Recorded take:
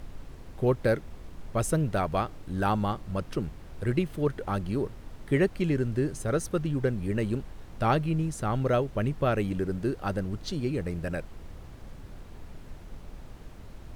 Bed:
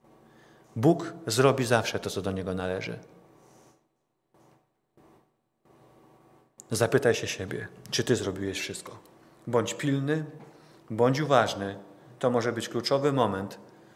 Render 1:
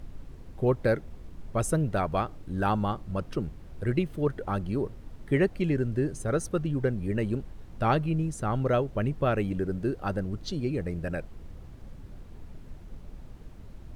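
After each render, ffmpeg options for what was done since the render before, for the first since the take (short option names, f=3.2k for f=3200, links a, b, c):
-af "afftdn=nr=6:nf=-46"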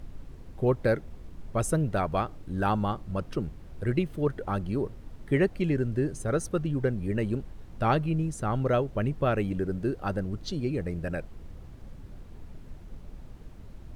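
-af anull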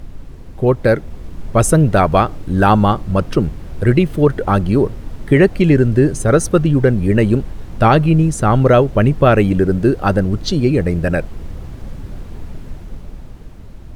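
-af "dynaudnorm=f=110:g=21:m=5.5dB,alimiter=level_in=10dB:limit=-1dB:release=50:level=0:latency=1"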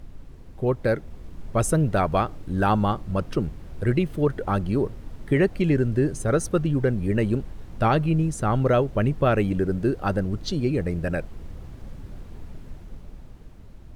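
-af "volume=-9.5dB"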